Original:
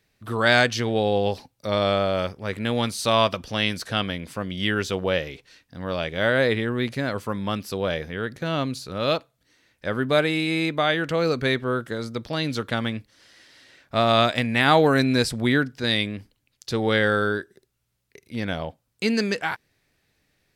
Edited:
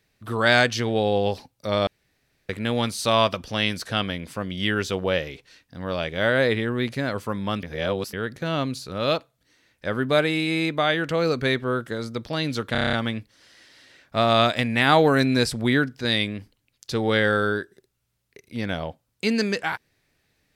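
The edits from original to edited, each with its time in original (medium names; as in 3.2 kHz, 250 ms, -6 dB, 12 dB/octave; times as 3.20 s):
1.87–2.49 s: room tone
7.63–8.13 s: reverse
12.72 s: stutter 0.03 s, 8 plays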